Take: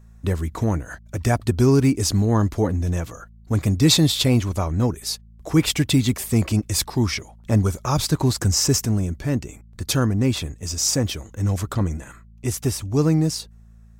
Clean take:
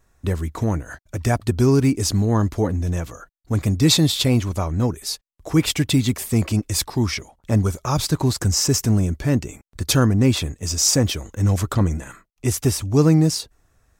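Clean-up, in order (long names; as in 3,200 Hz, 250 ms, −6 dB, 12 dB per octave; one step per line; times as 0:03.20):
clipped peaks rebuilt −7 dBFS
hum removal 55.6 Hz, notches 4
level 0 dB, from 0:08.85 +3.5 dB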